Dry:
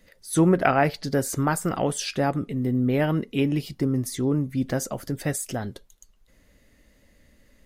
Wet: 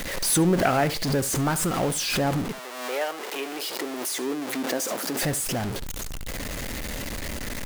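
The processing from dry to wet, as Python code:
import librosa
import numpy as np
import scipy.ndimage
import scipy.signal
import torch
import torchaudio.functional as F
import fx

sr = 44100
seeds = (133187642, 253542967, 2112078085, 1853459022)

y = x + 0.5 * 10.0 ** (-21.5 / 20.0) * np.sign(x)
y = fx.highpass(y, sr, hz=fx.line((2.51, 600.0), (5.22, 220.0)), slope=24, at=(2.51, 5.22), fade=0.02)
y = y + 10.0 ** (-16.0 / 20.0) * np.pad(y, (int(71 * sr / 1000.0), 0))[:len(y)]
y = fx.pre_swell(y, sr, db_per_s=45.0)
y = y * 10.0 ** (-4.5 / 20.0)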